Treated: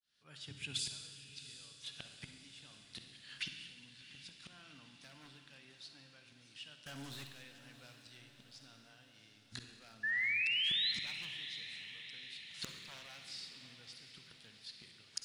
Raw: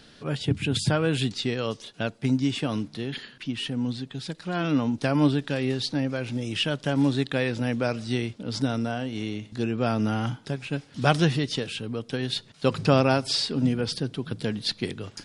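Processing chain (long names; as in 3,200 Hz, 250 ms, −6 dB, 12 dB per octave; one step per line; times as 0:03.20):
fade in at the beginning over 2.84 s
wave folding −15 dBFS
gate with flip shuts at −26 dBFS, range −25 dB
guitar amp tone stack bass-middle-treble 5-5-5
0:10.03–0:10.92: sound drawn into the spectrogram rise 1,700–4,200 Hz −44 dBFS
low-shelf EQ 460 Hz −7.5 dB
0:06.86–0:07.27: leveller curve on the samples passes 5
feedback delay with all-pass diffusion 740 ms, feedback 59%, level −12.5 dB
on a send at −6 dB: convolution reverb RT60 1.6 s, pre-delay 45 ms
on the sum: level +9.5 dB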